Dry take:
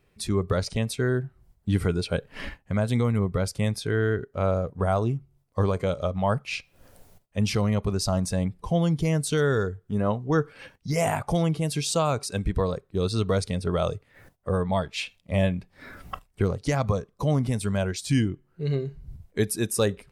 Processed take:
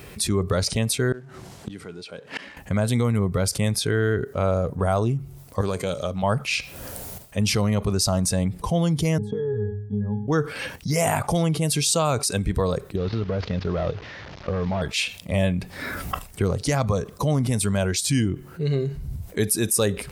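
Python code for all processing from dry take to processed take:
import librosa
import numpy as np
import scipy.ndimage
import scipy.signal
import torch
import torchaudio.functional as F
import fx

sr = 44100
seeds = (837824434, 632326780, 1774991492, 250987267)

y = fx.chain(x, sr, fx.law_mismatch(coded='mu'),
    fx.bandpass_edges(low_hz=200.0, high_hz=6300.0),
    fx.gate_flip(shuts_db=-30.0, range_db=-29), at=(1.12, 2.57))
y = fx.chain(y, sr, fx.highpass(hz=280.0, slope=6),
    fx.peak_eq(hz=920.0, db=-7.5, octaves=3.0),
    fx.doppler_dist(depth_ms=0.1), at=(5.61, 6.23))
y = fx.chain(y, sr, fx.peak_eq(hz=2700.0, db=-9.5, octaves=1.6),
    fx.octave_resonator(note='G#', decay_s=0.34),
    fx.band_squash(depth_pct=100), at=(9.18, 10.28))
y = fx.chain(y, sr, fx.delta_mod(bps=32000, step_db=-40.5),
    fx.lowpass(hz=3400.0, slope=12),
    fx.level_steps(step_db=15), at=(12.96, 14.82))
y = scipy.signal.sosfilt(scipy.signal.butter(2, 41.0, 'highpass', fs=sr, output='sos'), y)
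y = fx.high_shelf(y, sr, hz=6000.0, db=8.5)
y = fx.env_flatten(y, sr, amount_pct=50)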